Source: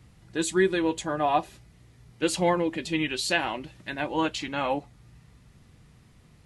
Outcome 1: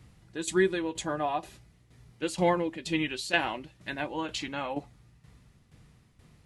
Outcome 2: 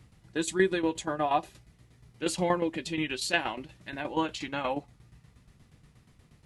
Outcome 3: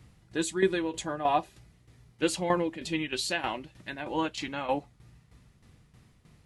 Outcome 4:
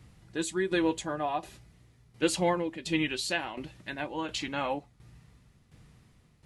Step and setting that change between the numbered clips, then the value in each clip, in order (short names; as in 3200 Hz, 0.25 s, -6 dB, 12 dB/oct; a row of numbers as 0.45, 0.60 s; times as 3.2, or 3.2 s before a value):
tremolo, rate: 2.1, 8.4, 3.2, 1.4 Hz